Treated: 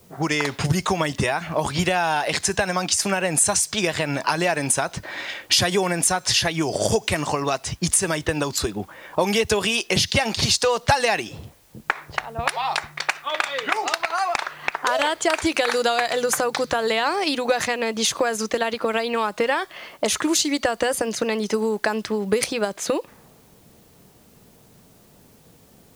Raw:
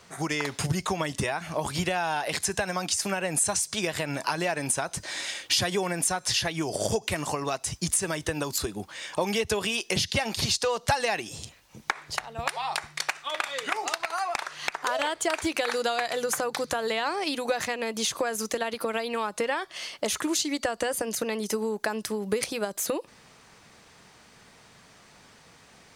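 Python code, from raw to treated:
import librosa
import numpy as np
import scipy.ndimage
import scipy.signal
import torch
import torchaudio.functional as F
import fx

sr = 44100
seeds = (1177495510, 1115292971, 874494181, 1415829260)

y = fx.env_lowpass(x, sr, base_hz=430.0, full_db=-24.0)
y = fx.dmg_noise_colour(y, sr, seeds[0], colour='white', level_db=-64.0)
y = y * librosa.db_to_amplitude(6.5)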